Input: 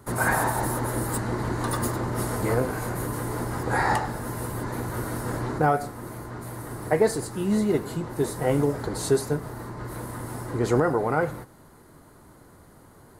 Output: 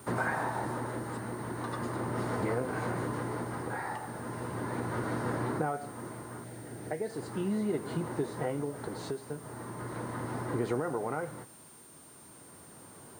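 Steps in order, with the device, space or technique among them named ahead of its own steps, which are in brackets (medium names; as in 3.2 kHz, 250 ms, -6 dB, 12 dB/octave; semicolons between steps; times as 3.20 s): 6.44–7.10 s: peaking EQ 1.1 kHz -13.5 dB 0.48 oct; medium wave at night (band-pass 120–3700 Hz; compression, threshold -28 dBFS, peak gain reduction 11.5 dB; tremolo 0.38 Hz, depth 50%; whistle 9 kHz -54 dBFS; white noise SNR 25 dB)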